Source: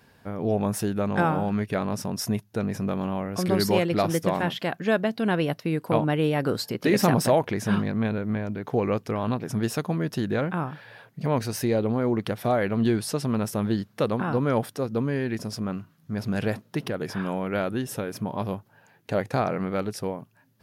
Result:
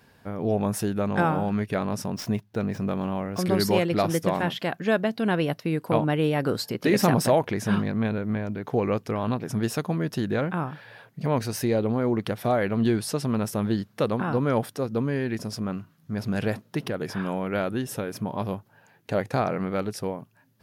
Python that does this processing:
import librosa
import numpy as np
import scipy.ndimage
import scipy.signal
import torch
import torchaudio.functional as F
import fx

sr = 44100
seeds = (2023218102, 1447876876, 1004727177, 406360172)

y = fx.median_filter(x, sr, points=5, at=(2.1, 3.39))